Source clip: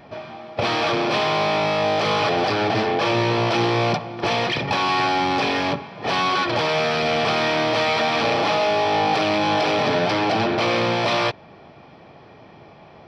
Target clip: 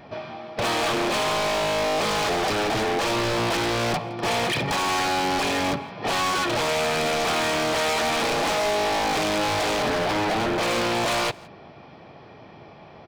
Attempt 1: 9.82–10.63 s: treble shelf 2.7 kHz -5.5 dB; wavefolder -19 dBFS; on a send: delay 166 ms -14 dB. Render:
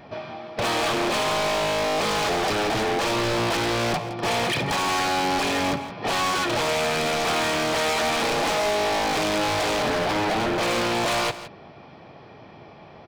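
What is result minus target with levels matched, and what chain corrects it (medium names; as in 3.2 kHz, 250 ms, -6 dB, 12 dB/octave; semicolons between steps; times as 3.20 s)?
echo-to-direct +9.5 dB
9.82–10.63 s: treble shelf 2.7 kHz -5.5 dB; wavefolder -19 dBFS; on a send: delay 166 ms -23.5 dB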